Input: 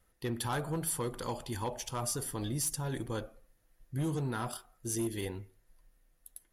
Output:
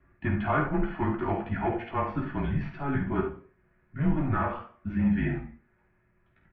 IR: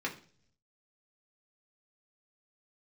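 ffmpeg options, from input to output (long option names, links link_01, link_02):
-filter_complex "[0:a]asettb=1/sr,asplit=3[link_01][link_02][link_03];[link_01]atrim=end=2.144[link_04];[link_02]atrim=start=2.14:end=2.84,asetpts=PTS-STARTPTS,afade=type=in:duration=0.004:curve=qsin,afade=type=out:start_time=0.696:duration=0.004:curve=qsin,aemphasis=mode=production:type=50fm[link_05];[link_03]atrim=start=2.836[link_06];[link_04][link_05]acrossfade=duration=0.004:curve1=hsin:curve2=qsin[link_07];[link_07][link_06]acrossfade=duration=0.004:curve1=qsin:curve2=hsin,acrossover=split=230[link_08][link_09];[link_08]acompressor=mode=upward:threshold=-42dB:ratio=2.5[link_10];[link_09]aecho=1:1:49|70:0.335|0.299[link_11];[link_10][link_11]amix=inputs=2:normalize=0[link_12];[1:a]atrim=start_sample=2205,afade=type=out:start_time=0.25:duration=0.01,atrim=end_sample=11466[link_13];[link_12][link_13]afir=irnorm=-1:irlink=0,highpass=frequency=170:width_type=q:width=0.5412,highpass=frequency=170:width_type=q:width=1.307,lowpass=frequency=2500:width_type=q:width=0.5176,lowpass=frequency=2500:width_type=q:width=0.7071,lowpass=frequency=2500:width_type=q:width=1.932,afreqshift=-140,volume=5.5dB"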